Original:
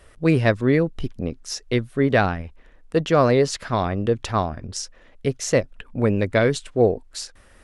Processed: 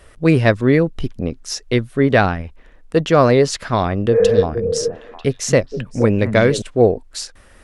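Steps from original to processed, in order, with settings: 4.16–4.41 spectral repair 400–2500 Hz before; 3.96–6.62 delay with a stepping band-pass 0.236 s, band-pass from 160 Hz, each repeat 1.4 oct, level -4 dB; gain +4.5 dB

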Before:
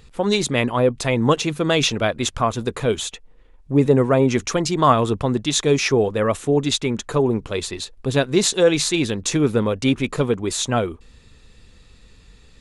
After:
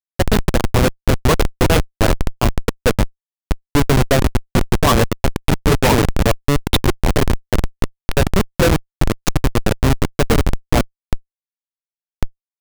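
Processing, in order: dynamic EQ 360 Hz, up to -4 dB, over -30 dBFS, Q 4.6; LFO low-pass saw up 5.6 Hz 410–6300 Hz; echoes that change speed 87 ms, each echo -3 st, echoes 2, each echo -6 dB; Schmitt trigger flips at -11.5 dBFS; gain +6.5 dB

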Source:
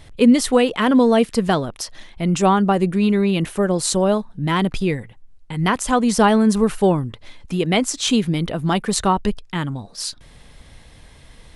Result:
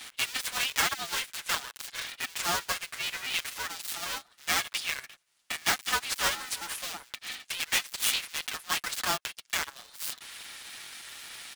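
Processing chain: switching dead time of 0.11 ms; compressor 2:1, threshold -33 dBFS, peak gain reduction 13.5 dB; Bessel high-pass 1900 Hz, order 8; comb 7.3 ms, depth 93%; polarity switched at an audio rate 260 Hz; gain +8.5 dB

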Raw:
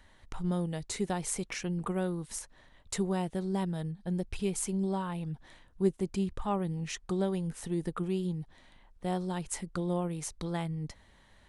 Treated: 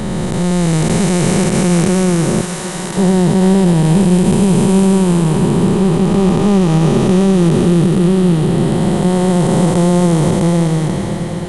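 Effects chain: time blur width 1.33 s; 2.41–2.97 HPF 980 Hz 12 dB/oct; on a send: swung echo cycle 0.76 s, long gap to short 3:1, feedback 74%, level -16.5 dB; on the sum: maximiser +28 dB; gain -1 dB

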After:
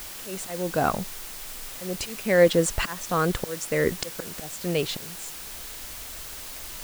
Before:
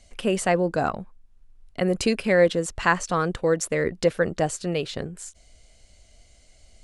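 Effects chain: auto swell 0.656 s; added noise white -45 dBFS; gain +6 dB

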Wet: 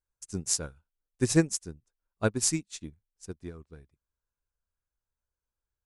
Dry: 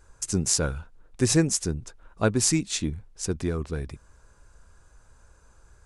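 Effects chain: high shelf 9300 Hz +6 dB, from 3.45 s -2.5 dB; upward expander 2.5:1, over -40 dBFS

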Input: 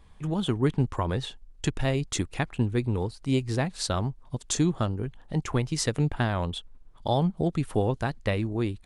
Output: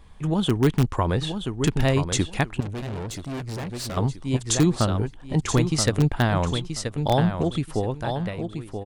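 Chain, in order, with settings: ending faded out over 1.93 s; feedback echo 0.979 s, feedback 20%, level -7.5 dB; 2.6–3.97 tube stage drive 34 dB, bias 0.45; in parallel at -9.5 dB: wrapped overs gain 14.5 dB; on the sum: gain +2.5 dB

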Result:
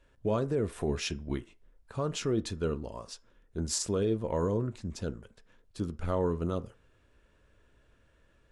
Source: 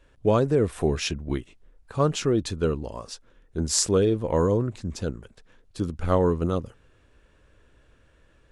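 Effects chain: limiter -15 dBFS, peak gain reduction 10 dB; on a send: reverb RT60 0.30 s, pre-delay 3 ms, DRR 12.5 dB; on the sum: gain -6 dB

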